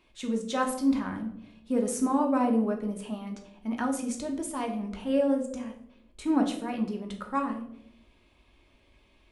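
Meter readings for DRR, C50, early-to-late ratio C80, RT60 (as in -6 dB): 2.0 dB, 9.0 dB, 12.5 dB, 0.80 s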